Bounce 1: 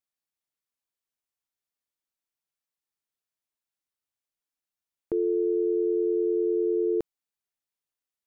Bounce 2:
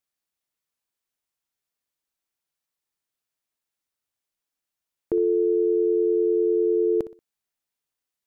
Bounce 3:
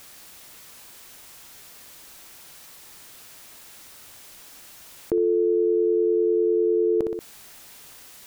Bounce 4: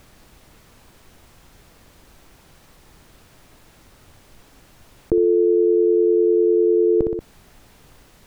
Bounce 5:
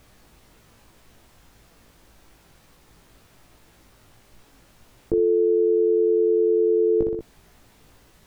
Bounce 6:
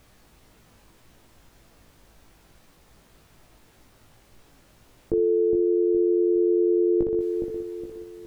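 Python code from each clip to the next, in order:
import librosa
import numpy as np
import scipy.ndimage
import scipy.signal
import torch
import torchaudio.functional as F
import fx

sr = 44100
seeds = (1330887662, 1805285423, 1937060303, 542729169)

y1 = fx.echo_feedback(x, sr, ms=61, feedback_pct=32, wet_db=-14.5)
y1 = y1 * librosa.db_to_amplitude(4.0)
y2 = fx.env_flatten(y1, sr, amount_pct=70)
y3 = fx.tilt_eq(y2, sr, slope=-3.5)
y4 = fx.doubler(y3, sr, ms=18.0, db=-4)
y4 = y4 * librosa.db_to_amplitude(-5.5)
y5 = fx.echo_bbd(y4, sr, ms=414, stages=2048, feedback_pct=41, wet_db=-5.5)
y5 = y5 * librosa.db_to_amplitude(-2.0)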